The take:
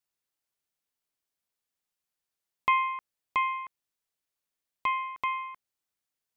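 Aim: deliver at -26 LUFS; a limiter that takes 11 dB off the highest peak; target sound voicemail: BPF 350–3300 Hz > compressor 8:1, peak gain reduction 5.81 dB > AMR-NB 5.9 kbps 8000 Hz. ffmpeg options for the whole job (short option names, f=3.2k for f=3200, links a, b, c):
-af "alimiter=level_in=1.5dB:limit=-24dB:level=0:latency=1,volume=-1.5dB,highpass=350,lowpass=3.3k,acompressor=threshold=-34dB:ratio=8,volume=15.5dB" -ar 8000 -c:a libopencore_amrnb -b:a 5900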